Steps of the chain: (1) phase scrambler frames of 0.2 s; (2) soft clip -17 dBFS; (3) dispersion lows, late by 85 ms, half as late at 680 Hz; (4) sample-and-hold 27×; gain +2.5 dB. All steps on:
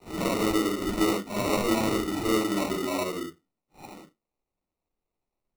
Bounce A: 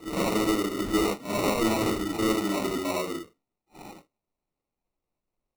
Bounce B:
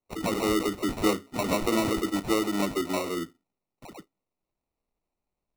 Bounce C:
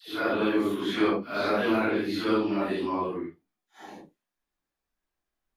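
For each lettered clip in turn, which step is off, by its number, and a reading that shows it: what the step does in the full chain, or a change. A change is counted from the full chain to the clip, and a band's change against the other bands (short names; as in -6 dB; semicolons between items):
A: 3, crest factor change -2.5 dB; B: 1, momentary loudness spread change -5 LU; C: 4, 125 Hz band -4.5 dB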